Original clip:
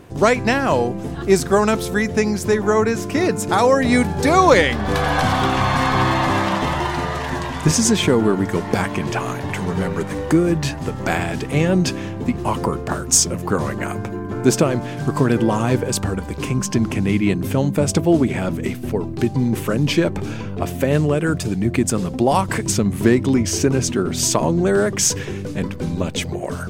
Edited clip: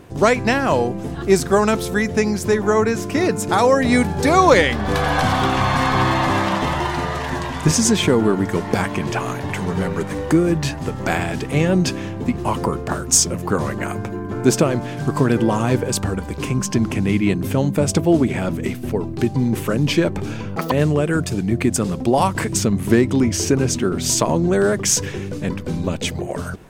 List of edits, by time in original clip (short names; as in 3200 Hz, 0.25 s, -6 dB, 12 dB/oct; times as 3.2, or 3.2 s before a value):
20.56–20.85 speed 187%